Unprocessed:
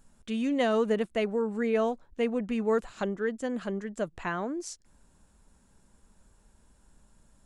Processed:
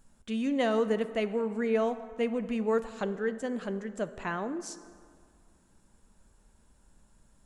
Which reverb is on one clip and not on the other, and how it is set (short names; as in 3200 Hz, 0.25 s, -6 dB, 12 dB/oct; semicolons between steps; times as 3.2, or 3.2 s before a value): plate-style reverb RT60 2.1 s, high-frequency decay 0.55×, DRR 11.5 dB; gain -1.5 dB